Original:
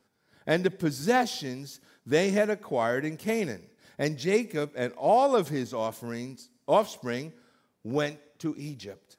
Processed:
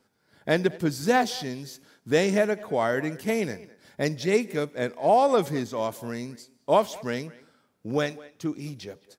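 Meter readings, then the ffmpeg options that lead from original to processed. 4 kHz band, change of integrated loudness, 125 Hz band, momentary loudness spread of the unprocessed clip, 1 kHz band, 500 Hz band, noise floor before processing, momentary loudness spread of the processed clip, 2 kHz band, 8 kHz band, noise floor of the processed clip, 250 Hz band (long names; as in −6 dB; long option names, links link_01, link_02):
+2.0 dB, +2.0 dB, +2.0 dB, 17 LU, +2.0 dB, +2.0 dB, −71 dBFS, 17 LU, +2.0 dB, +2.0 dB, −69 dBFS, +2.0 dB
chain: -filter_complex "[0:a]asplit=2[link_01][link_02];[link_02]adelay=210,highpass=300,lowpass=3400,asoftclip=type=hard:threshold=-19.5dB,volume=-19dB[link_03];[link_01][link_03]amix=inputs=2:normalize=0,volume=2dB"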